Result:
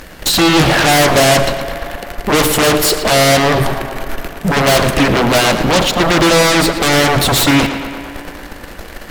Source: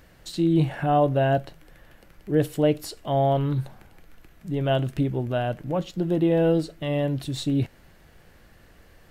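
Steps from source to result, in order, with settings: bell 110 Hz -13 dB 0.77 oct; sample leveller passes 2; in parallel at -4 dB: sine folder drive 19 dB, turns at -9.5 dBFS; on the sum: tape echo 0.112 s, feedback 83%, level -7.5 dB, low-pass 4200 Hz; gain +3 dB

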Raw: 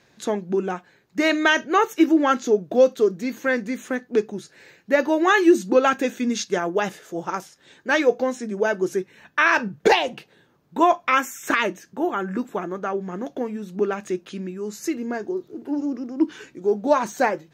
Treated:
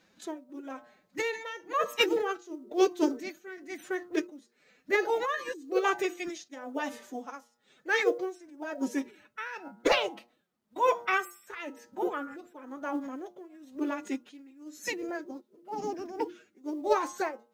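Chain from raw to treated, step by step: de-hum 81.4 Hz, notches 18; formant-preserving pitch shift +6.5 st; tremolo 1 Hz, depth 84%; companded quantiser 8-bit; gain -6 dB

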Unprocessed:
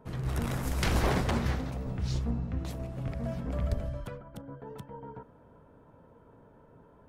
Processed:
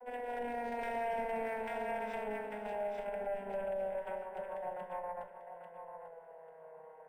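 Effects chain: vocoder on a gliding note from B3, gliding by -8 st; HPF 400 Hz 24 dB/oct; bell 530 Hz -4 dB 0.28 oct; thinning echo 0.843 s, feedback 23%, high-pass 870 Hz, level -6 dB; tube stage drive 38 dB, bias 0.45; high shelf 4200 Hz -11 dB; in parallel at +3 dB: compressor, threshold -50 dBFS, peak gain reduction 10 dB; on the sum: fixed phaser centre 1200 Hz, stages 6; on a send at -9 dB: reverb RT60 0.50 s, pre-delay 4 ms; on the sum: limiter -39 dBFS, peak gain reduction 7.5 dB; decimation joined by straight lines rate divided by 4×; gain +9 dB

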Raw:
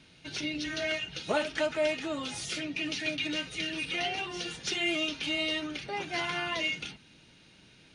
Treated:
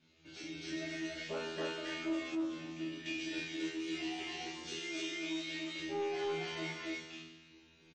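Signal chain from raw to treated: self-modulated delay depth 0.058 ms; bell 350 Hz +10 dB 0.64 oct; resonator 81 Hz, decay 1.8 s, harmonics all, mix 100%; reverb removal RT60 0.66 s; loudspeakers at several distances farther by 44 m -12 dB, 95 m 0 dB; soft clip -36.5 dBFS, distortion -21 dB; 2.35–3.06 LPF 1400 Hz 6 dB/oct; 4.79–5.8 low shelf 220 Hz -10.5 dB; gain +8.5 dB; MP3 32 kbps 24000 Hz

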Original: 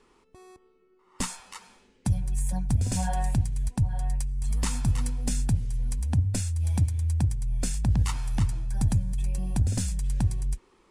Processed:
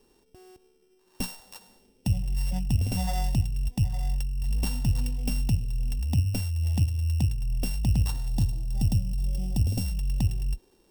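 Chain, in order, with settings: sample sorter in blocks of 16 samples; band shelf 1700 Hz -9 dB, from 8.27 s -15.5 dB, from 9.84 s -9.5 dB

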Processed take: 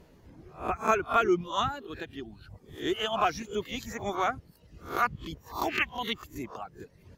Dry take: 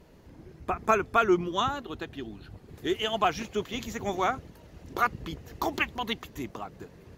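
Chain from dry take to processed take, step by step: spectral swells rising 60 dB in 0.36 s; reverb removal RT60 0.9 s; gain -2 dB

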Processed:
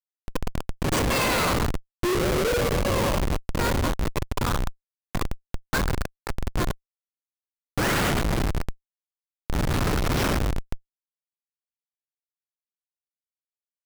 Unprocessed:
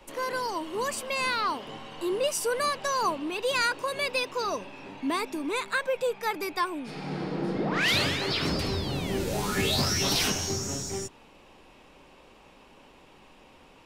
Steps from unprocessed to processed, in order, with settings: in parallel at -1 dB: limiter -25 dBFS, peak gain reduction 9 dB; 0.74–1.57 on the sum: weighting filter ITU-R 468; high-pass sweep 180 Hz -> 1300 Hz, 0.92–4.7; 3.34–4.32 low shelf 490 Hz -7.5 dB; 8.71–9.34 frequency shift -170 Hz; on a send: feedback echo 0.816 s, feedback 52%, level -14.5 dB; on the sum: non-linear reverb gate 0.31 s flat, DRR -1 dB; Schmitt trigger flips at -14 dBFS

